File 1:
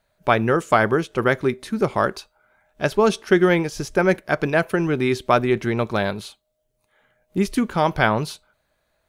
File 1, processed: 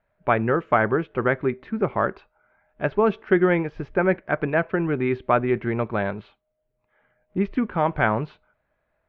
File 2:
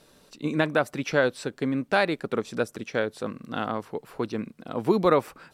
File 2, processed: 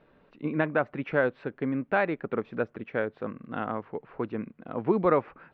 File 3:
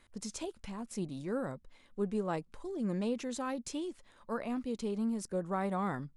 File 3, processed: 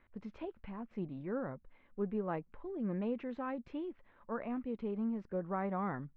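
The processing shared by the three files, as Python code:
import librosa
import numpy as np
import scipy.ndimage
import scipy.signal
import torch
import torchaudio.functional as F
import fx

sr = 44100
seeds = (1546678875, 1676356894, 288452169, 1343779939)

y = scipy.signal.sosfilt(scipy.signal.butter(4, 2400.0, 'lowpass', fs=sr, output='sos'), x)
y = F.gain(torch.from_numpy(y), -2.5).numpy()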